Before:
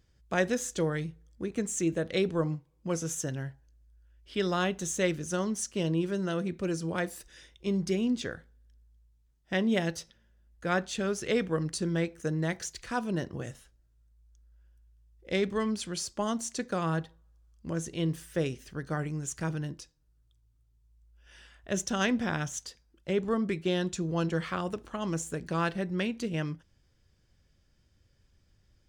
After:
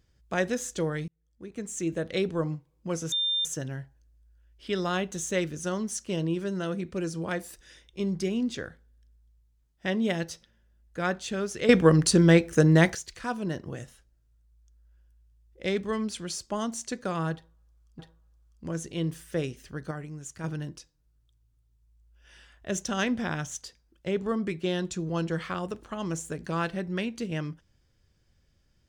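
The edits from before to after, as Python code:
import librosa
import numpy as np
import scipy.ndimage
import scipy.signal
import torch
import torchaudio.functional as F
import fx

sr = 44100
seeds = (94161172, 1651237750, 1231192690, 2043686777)

y = fx.edit(x, sr, fx.fade_in_span(start_s=1.08, length_s=0.93),
    fx.insert_tone(at_s=3.12, length_s=0.33, hz=3600.0, db=-24.0),
    fx.clip_gain(start_s=11.36, length_s=1.26, db=11.5),
    fx.repeat(start_s=17.01, length_s=0.65, count=2),
    fx.clip_gain(start_s=18.93, length_s=0.53, db=-5.5), tone=tone)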